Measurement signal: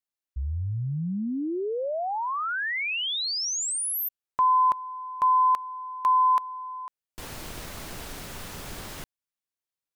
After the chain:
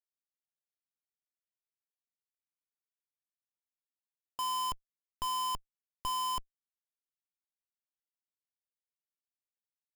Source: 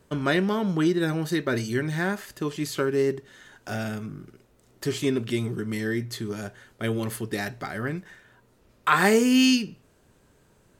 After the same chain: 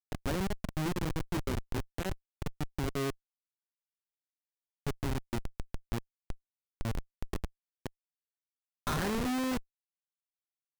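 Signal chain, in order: Wiener smoothing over 25 samples; high shelf 3300 Hz +2 dB; in parallel at -1 dB: compressor 6:1, threshold -32 dBFS; on the sum: Schmitt trigger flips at -19 dBFS; gain -6 dB

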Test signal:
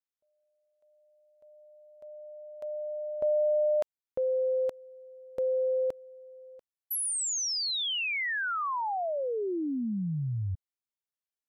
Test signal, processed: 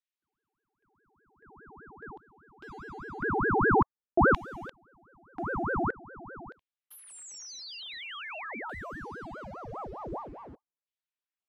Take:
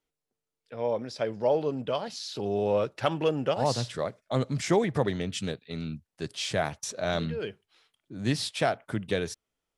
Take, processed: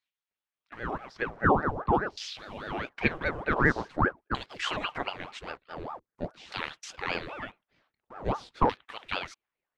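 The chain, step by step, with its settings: thirty-one-band EQ 160 Hz +11 dB, 250 Hz +6 dB, 10000 Hz -5 dB; in parallel at -11 dB: bit-crush 7-bit; on the sum: LFO band-pass saw down 0.46 Hz 450–3000 Hz; ring modulator with a swept carrier 610 Hz, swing 75%, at 4.9 Hz; gain +8 dB

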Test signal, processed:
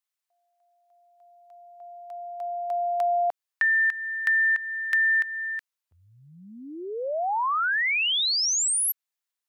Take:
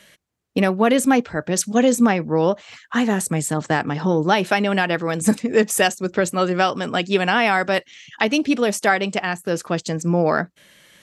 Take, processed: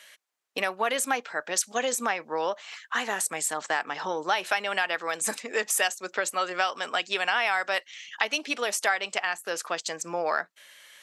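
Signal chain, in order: HPF 810 Hz 12 dB/oct; compressor 2:1, threshold -25 dBFS

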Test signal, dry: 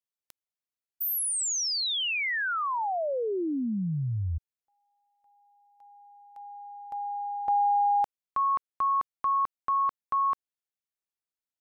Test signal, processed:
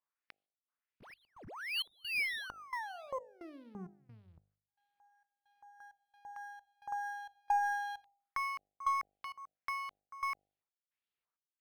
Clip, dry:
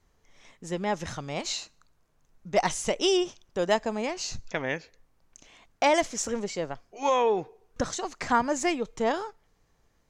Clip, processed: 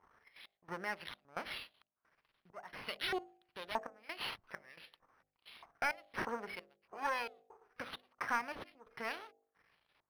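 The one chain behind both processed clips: half-wave gain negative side -12 dB; high shelf 7400 Hz -5.5 dB; step gate "xxxx..xxxx.." 132 bpm -24 dB; compressor 1.5:1, threshold -56 dBFS; LFO band-pass saw up 1.6 Hz 960–5400 Hz; de-hum 50.24 Hz, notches 16; soft clip -35.5 dBFS; low shelf 310 Hz +9 dB; decimation joined by straight lines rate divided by 6×; gain +14.5 dB

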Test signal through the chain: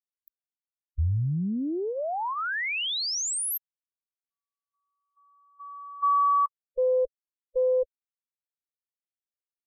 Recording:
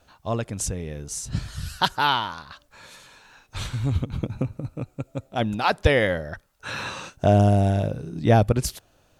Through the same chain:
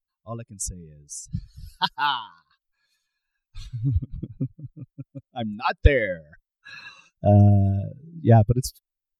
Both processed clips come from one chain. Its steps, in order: per-bin expansion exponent 2; low shelf 89 Hz +11.5 dB; Doppler distortion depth 0.14 ms; gain +1 dB

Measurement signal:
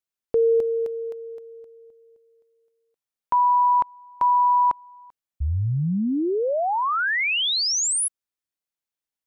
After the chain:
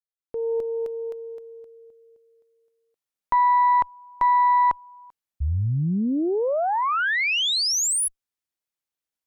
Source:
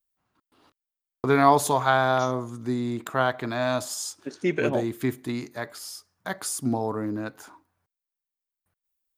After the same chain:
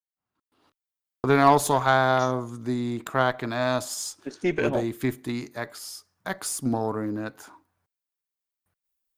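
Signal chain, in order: opening faded in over 1.10 s; added harmonics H 6 -25 dB, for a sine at -4 dBFS

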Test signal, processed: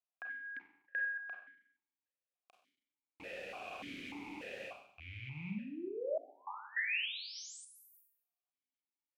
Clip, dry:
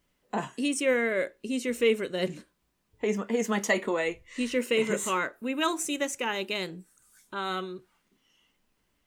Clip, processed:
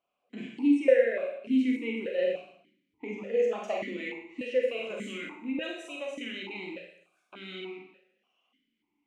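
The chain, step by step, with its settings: rattling part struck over -46 dBFS, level -33 dBFS; Schroeder reverb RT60 0.69 s, combs from 31 ms, DRR -0.5 dB; dynamic EQ 1100 Hz, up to -5 dB, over -44 dBFS, Q 2; vowel sequencer 3.4 Hz; gain +4.5 dB

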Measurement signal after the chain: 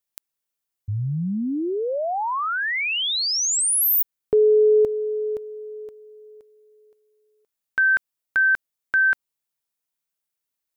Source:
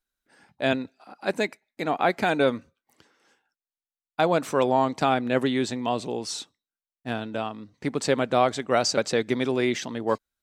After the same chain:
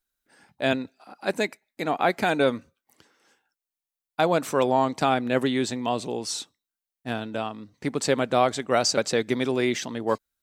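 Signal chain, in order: high shelf 8600 Hz +7.5 dB

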